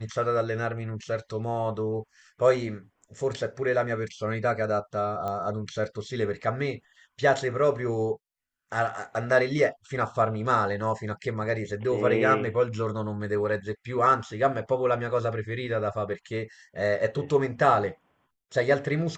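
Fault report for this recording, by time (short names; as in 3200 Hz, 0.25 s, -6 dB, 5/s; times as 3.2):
5.28 pop -20 dBFS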